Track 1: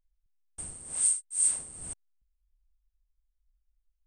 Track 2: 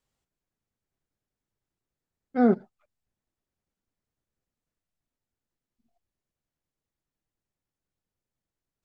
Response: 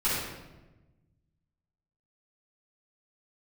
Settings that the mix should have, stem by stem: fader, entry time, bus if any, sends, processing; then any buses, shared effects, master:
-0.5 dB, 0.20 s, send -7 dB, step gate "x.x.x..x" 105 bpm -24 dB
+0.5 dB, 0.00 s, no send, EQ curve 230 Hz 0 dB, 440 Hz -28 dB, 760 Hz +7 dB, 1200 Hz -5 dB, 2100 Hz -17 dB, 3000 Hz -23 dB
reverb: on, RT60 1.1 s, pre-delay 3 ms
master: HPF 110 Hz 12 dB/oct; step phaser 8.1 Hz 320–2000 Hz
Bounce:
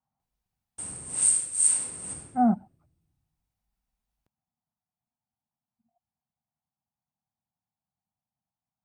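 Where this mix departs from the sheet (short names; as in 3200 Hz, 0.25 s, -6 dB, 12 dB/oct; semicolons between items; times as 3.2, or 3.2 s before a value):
stem 1: missing step gate "x.x.x..x" 105 bpm -24 dB; master: missing step phaser 8.1 Hz 320–2000 Hz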